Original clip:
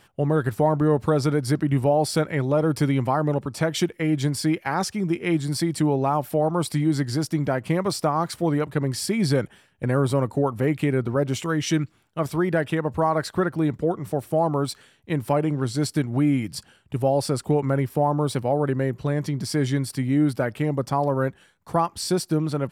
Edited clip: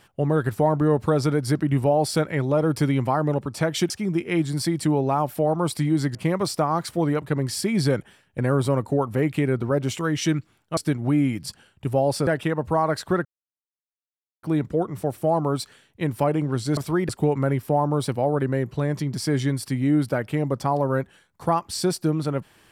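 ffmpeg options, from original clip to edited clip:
ffmpeg -i in.wav -filter_complex "[0:a]asplit=8[link_01][link_02][link_03][link_04][link_05][link_06][link_07][link_08];[link_01]atrim=end=3.902[link_09];[link_02]atrim=start=4.848:end=7.102[link_10];[link_03]atrim=start=7.598:end=12.222[link_11];[link_04]atrim=start=15.858:end=17.362[link_12];[link_05]atrim=start=12.538:end=13.52,asetpts=PTS-STARTPTS,afade=type=out:start_time=0.978:duration=0.004:curve=hsin,apad=pad_dur=1.18[link_13];[link_06]atrim=start=13.52:end=15.862,asetpts=PTS-STARTPTS,afade=type=in:duration=0.004:curve=hsin[link_14];[link_07]atrim=start=12.218:end=12.542[link_15];[link_08]atrim=start=17.358[link_16];[link_09][link_10]acrossfade=duration=0.004:curve1=hsin:curve2=hsin[link_17];[link_17][link_11]acrossfade=duration=0.004:curve1=hsin:curve2=hsin[link_18];[link_18][link_12]acrossfade=duration=0.004:curve1=hsin:curve2=hsin[link_19];[link_13][link_14]concat=n=2:v=0:a=1[link_20];[link_19][link_20]acrossfade=duration=0.004:curve1=hsin:curve2=hsin[link_21];[link_21][link_15]acrossfade=duration=0.004:curve1=hsin:curve2=hsin[link_22];[link_22][link_16]acrossfade=duration=0.004:curve1=hsin:curve2=hsin" out.wav

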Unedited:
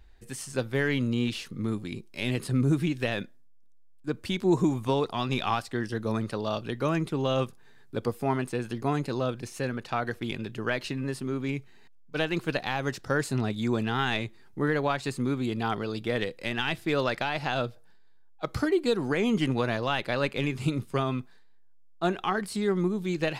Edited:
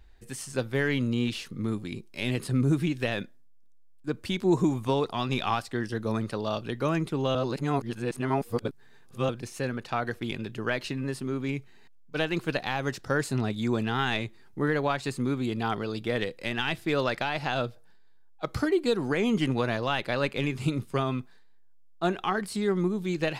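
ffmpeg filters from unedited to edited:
ffmpeg -i in.wav -filter_complex "[0:a]asplit=3[link_01][link_02][link_03];[link_01]atrim=end=7.352[link_04];[link_02]atrim=start=7.348:end=9.292,asetpts=PTS-STARTPTS,areverse[link_05];[link_03]atrim=start=9.288[link_06];[link_04][link_05]acrossfade=duration=0.004:curve1=hsin:curve2=hsin[link_07];[link_07][link_06]acrossfade=duration=0.004:curve1=hsin:curve2=hsin" out.wav

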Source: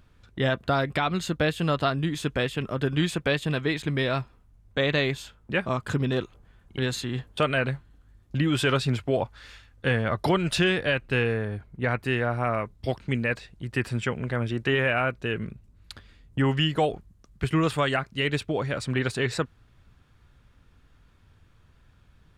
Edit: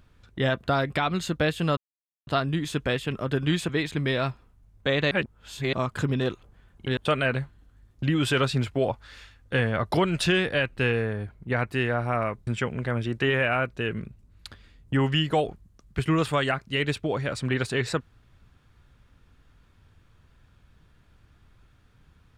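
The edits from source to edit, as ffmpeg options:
ffmpeg -i in.wav -filter_complex "[0:a]asplit=7[link_01][link_02][link_03][link_04][link_05][link_06][link_07];[link_01]atrim=end=1.77,asetpts=PTS-STARTPTS,afade=type=out:start_time=1.766:duration=0.004:curve=hsin,apad=pad_dur=0.5[link_08];[link_02]atrim=start=1.77:end=3.192,asetpts=PTS-STARTPTS,afade=type=in:duration=0.004:curve=hsin[link_09];[link_03]atrim=start=3.598:end=5.022[link_10];[link_04]atrim=start=5.018:end=5.642,asetpts=PTS-STARTPTS,areverse[link_11];[link_05]atrim=start=5.638:end=6.882[link_12];[link_06]atrim=start=7.288:end=12.792[link_13];[link_07]atrim=start=13.918[link_14];[link_08][link_09]concat=n=2:v=0:a=1[link_15];[link_15][link_10]acrossfade=duration=0.004:curve1=hsin:curve2=hsin[link_16];[link_16][link_11]acrossfade=duration=0.004:curve1=hsin:curve2=hsin[link_17];[link_17][link_12]acrossfade=duration=0.004:curve1=hsin:curve2=hsin[link_18];[link_18][link_13]acrossfade=duration=0.004:curve1=hsin:curve2=hsin[link_19];[link_19][link_14]acrossfade=duration=0.004:curve1=hsin:curve2=hsin" out.wav

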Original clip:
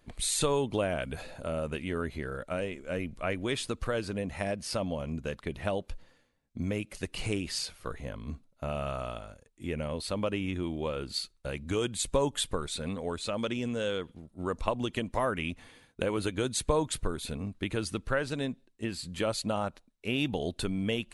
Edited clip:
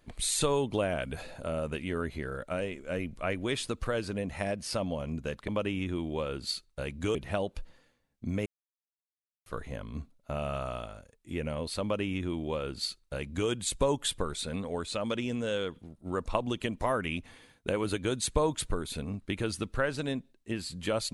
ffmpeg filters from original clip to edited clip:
ffmpeg -i in.wav -filter_complex "[0:a]asplit=5[link_01][link_02][link_03][link_04][link_05];[link_01]atrim=end=5.482[link_06];[link_02]atrim=start=10.148:end=11.822[link_07];[link_03]atrim=start=5.478:end=6.79,asetpts=PTS-STARTPTS,afade=type=out:start_time=1.308:duration=0.004:curve=hsin[link_08];[link_04]atrim=start=6.79:end=7.79,asetpts=PTS-STARTPTS,volume=0[link_09];[link_05]atrim=start=7.79,asetpts=PTS-STARTPTS,afade=type=in:duration=0.004:curve=hsin[link_10];[link_06][link_07]acrossfade=duration=0.004:curve1=hsin:curve2=hsin[link_11];[link_08][link_09][link_10]concat=n=3:v=0:a=1[link_12];[link_11][link_12]acrossfade=duration=0.004:curve1=hsin:curve2=hsin" out.wav

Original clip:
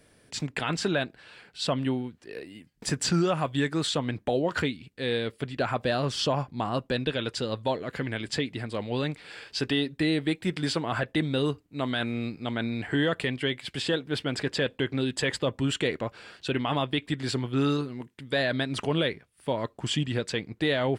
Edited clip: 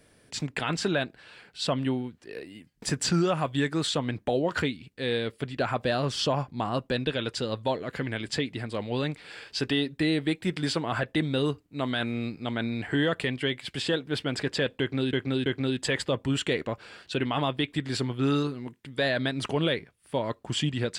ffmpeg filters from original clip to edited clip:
ffmpeg -i in.wav -filter_complex "[0:a]asplit=3[link_01][link_02][link_03];[link_01]atrim=end=15.132[link_04];[link_02]atrim=start=14.798:end=15.132[link_05];[link_03]atrim=start=14.798[link_06];[link_04][link_05]acrossfade=duration=0.004:curve1=hsin:curve2=hsin[link_07];[link_07][link_06]acrossfade=duration=0.004:curve1=hsin:curve2=hsin" out.wav

